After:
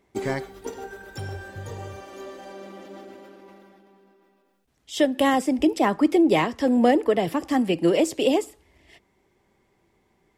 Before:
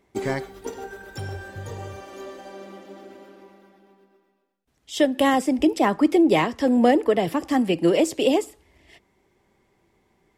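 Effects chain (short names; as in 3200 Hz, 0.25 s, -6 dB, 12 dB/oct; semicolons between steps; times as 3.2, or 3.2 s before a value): 2.31–5 sustainer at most 24 dB/s; gain -1 dB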